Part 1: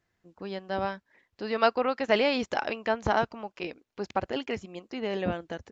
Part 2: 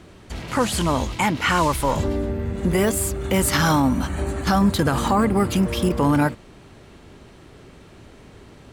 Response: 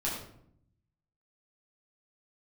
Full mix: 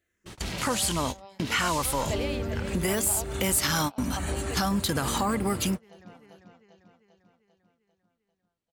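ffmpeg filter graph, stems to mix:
-filter_complex "[0:a]crystalizer=i=1:c=0,equalizer=frequency=5800:width_type=o:width=0.86:gain=4.5,asplit=2[link_01][link_02];[link_02]afreqshift=-0.84[link_03];[link_01][link_03]amix=inputs=2:normalize=1,volume=0dB,asplit=3[link_04][link_05][link_06];[link_05]volume=-11.5dB[link_07];[1:a]highshelf=frequency=2700:gain=11,adelay=100,volume=2dB[link_08];[link_06]apad=whole_len=389075[link_09];[link_08][link_09]sidechaingate=range=-48dB:threshold=-57dB:ratio=16:detection=peak[link_10];[link_07]aecho=0:1:396|792|1188|1584|1980|2376|2772|3168:1|0.56|0.314|0.176|0.0983|0.0551|0.0308|0.0173[link_11];[link_04][link_10][link_11]amix=inputs=3:normalize=0,acompressor=threshold=-33dB:ratio=2"

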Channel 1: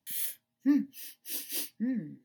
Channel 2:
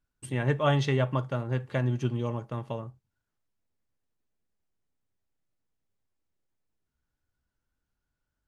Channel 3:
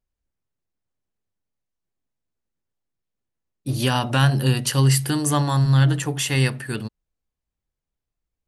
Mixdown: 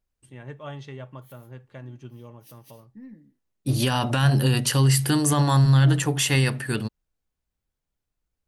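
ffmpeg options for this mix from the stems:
ffmpeg -i stem1.wav -i stem2.wav -i stem3.wav -filter_complex "[0:a]alimiter=level_in=1.5dB:limit=-24dB:level=0:latency=1,volume=-1.5dB,aeval=exprs='0.0562*(cos(1*acos(clip(val(0)/0.0562,-1,1)))-cos(1*PI/2))+0.00178*(cos(4*acos(clip(val(0)/0.0562,-1,1)))-cos(4*PI/2))':channel_layout=same,adelay=1150,volume=-11dB[link_01];[1:a]volume=-13dB,asplit=2[link_02][link_03];[2:a]volume=1.5dB[link_04];[link_03]apad=whole_len=149561[link_05];[link_01][link_05]sidechaincompress=threshold=-58dB:ratio=5:attack=16:release=108[link_06];[link_06][link_02][link_04]amix=inputs=3:normalize=0,alimiter=limit=-11dB:level=0:latency=1:release=16" out.wav

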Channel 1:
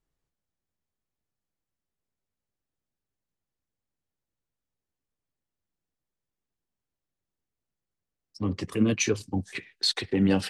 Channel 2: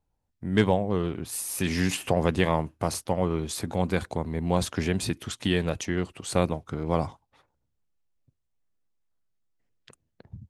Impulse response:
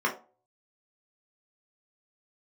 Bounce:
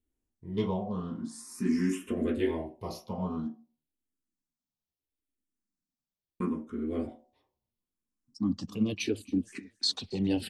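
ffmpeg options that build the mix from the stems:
-filter_complex "[0:a]asplit=2[link_01][link_02];[link_02]afreqshift=-0.76[link_03];[link_01][link_03]amix=inputs=2:normalize=1,volume=-1dB,asplit=2[link_04][link_05];[link_05]volume=-22.5dB[link_06];[1:a]asplit=2[link_07][link_08];[link_08]afreqshift=0.43[link_09];[link_07][link_09]amix=inputs=2:normalize=1,volume=-7.5dB,asplit=3[link_10][link_11][link_12];[link_10]atrim=end=3.47,asetpts=PTS-STARTPTS,afade=type=out:start_time=3.466:duration=0.004:curve=hsin[link_13];[link_11]atrim=start=3.47:end=6.4,asetpts=PTS-STARTPTS,volume=0[link_14];[link_12]atrim=start=6.4,asetpts=PTS-STARTPTS,afade=type=in:duration=0.004:curve=hsin[link_15];[link_13][link_14][link_15]concat=n=3:v=0:a=1,asplit=2[link_16][link_17];[link_17]volume=-5.5dB[link_18];[2:a]atrim=start_sample=2205[link_19];[link_18][link_19]afir=irnorm=-1:irlink=0[link_20];[link_06]aecho=0:1:273|546|819|1092:1|0.31|0.0961|0.0298[link_21];[link_04][link_16][link_20][link_21]amix=inputs=4:normalize=0,equalizer=frequency=125:width_type=o:width=1:gain=-9,equalizer=frequency=250:width_type=o:width=1:gain=11,equalizer=frequency=500:width_type=o:width=1:gain=-8,equalizer=frequency=1000:width_type=o:width=1:gain=-4,equalizer=frequency=2000:width_type=o:width=1:gain=-7"

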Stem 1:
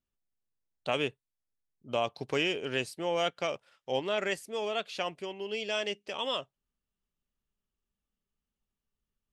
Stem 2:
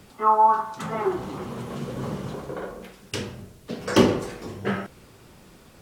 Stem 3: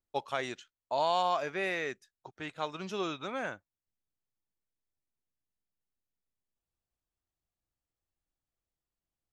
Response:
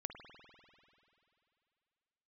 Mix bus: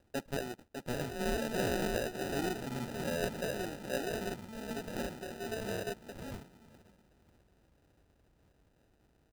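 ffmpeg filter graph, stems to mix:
-filter_complex "[0:a]lowshelf=frequency=340:gain=8.5,asplit=2[link_01][link_02];[link_02]afreqshift=-0.52[link_03];[link_01][link_03]amix=inputs=2:normalize=1,volume=-6dB,asplit=2[link_04][link_05];[1:a]equalizer=frequency=230:width=5.8:gain=8.5,acompressor=threshold=-29dB:ratio=6,adelay=1000,volume=-10.5dB,asplit=2[link_06][link_07];[link_07]volume=-11dB[link_08];[2:a]tiltshelf=frequency=690:gain=3,acompressor=mode=upward:threshold=-43dB:ratio=2.5,volume=-3dB,asplit=2[link_09][link_10];[link_10]volume=-4dB[link_11];[link_05]apad=whole_len=411084[link_12];[link_09][link_12]sidechaincompress=threshold=-55dB:ratio=8:attack=16:release=153[link_13];[link_08][link_11]amix=inputs=2:normalize=0,aecho=0:1:603|1206|1809|2412:1|0.26|0.0676|0.0176[link_14];[link_04][link_06][link_13][link_14]amix=inputs=4:normalize=0,highpass=42,acrusher=samples=40:mix=1:aa=0.000001"

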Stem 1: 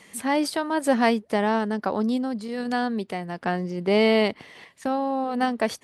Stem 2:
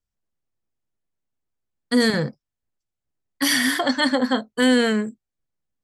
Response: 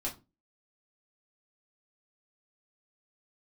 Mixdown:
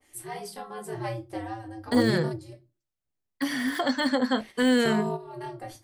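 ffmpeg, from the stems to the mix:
-filter_complex "[0:a]aemphasis=mode=production:type=50fm,aeval=exprs='val(0)*sin(2*PI*110*n/s)':channel_layout=same,adynamicequalizer=threshold=0.00891:dfrequency=2100:dqfactor=0.7:tfrequency=2100:tqfactor=0.7:attack=5:release=100:ratio=0.375:range=3:mode=cutabove:tftype=highshelf,volume=-2.5dB,asplit=3[link_01][link_02][link_03];[link_01]atrim=end=2.53,asetpts=PTS-STARTPTS,afade=type=out:start_time=2.526:duration=0.004:curve=hsin[link_04];[link_02]atrim=start=2.53:end=4.37,asetpts=PTS-STARTPTS,volume=0[link_05];[link_03]atrim=start=4.37,asetpts=PTS-STARTPTS,afade=type=in:duration=0.004:curve=hsin[link_06];[link_04][link_05][link_06]concat=n=3:v=0:a=1,asplit=2[link_07][link_08];[link_08]volume=-12dB[link_09];[1:a]deesser=0.65,volume=-4dB,asplit=2[link_10][link_11];[link_11]apad=whole_len=257417[link_12];[link_07][link_12]sidechaingate=range=-21dB:threshold=-39dB:ratio=16:detection=peak[link_13];[2:a]atrim=start_sample=2205[link_14];[link_09][link_14]afir=irnorm=-1:irlink=0[link_15];[link_13][link_10][link_15]amix=inputs=3:normalize=0"

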